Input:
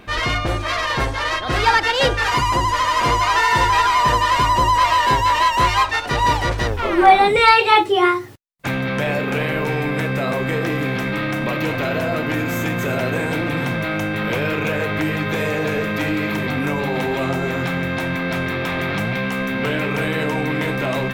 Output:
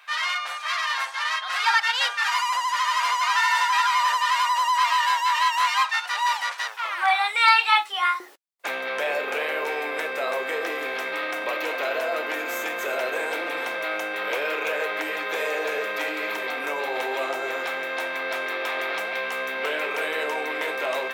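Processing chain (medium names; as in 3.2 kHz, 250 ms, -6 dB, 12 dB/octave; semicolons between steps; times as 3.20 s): high-pass 970 Hz 24 dB/octave, from 8.20 s 440 Hz; trim -3 dB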